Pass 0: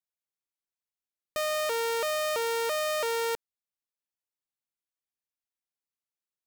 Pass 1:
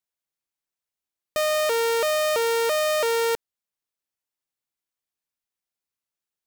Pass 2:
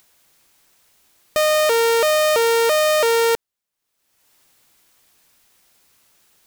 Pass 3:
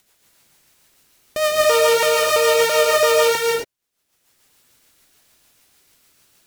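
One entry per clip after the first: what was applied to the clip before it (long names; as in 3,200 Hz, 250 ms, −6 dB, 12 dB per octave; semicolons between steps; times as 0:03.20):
leveller curve on the samples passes 1; level +5.5 dB
upward compression, threshold −44 dBFS; level +6 dB
rotating-speaker cabinet horn 6.7 Hz; reverb whose tail is shaped and stops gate 300 ms rising, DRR −2 dB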